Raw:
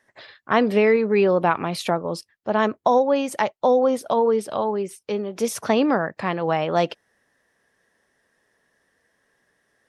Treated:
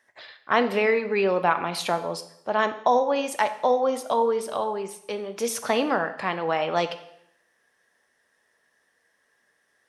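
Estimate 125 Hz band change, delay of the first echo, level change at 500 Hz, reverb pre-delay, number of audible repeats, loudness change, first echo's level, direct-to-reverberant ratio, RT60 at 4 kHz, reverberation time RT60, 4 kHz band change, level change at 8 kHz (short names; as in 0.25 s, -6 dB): -8.0 dB, none, -4.0 dB, 4 ms, none, -3.0 dB, none, 9.0 dB, 0.70 s, 0.75 s, +0.5 dB, +0.5 dB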